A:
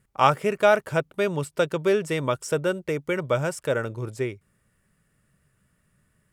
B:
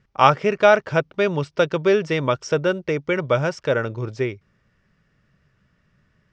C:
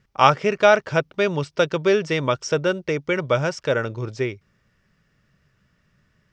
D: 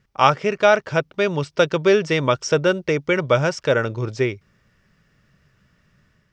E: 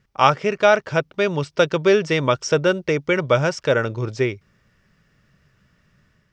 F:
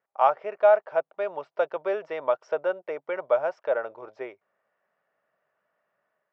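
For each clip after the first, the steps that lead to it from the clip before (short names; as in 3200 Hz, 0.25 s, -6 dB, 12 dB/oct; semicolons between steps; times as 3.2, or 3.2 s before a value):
elliptic low-pass 5800 Hz, stop band 80 dB; gain +5 dB
high shelf 4100 Hz +7 dB; gain -1 dB
AGC gain up to 4 dB
nothing audible
ladder band-pass 780 Hz, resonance 55%; gain +3.5 dB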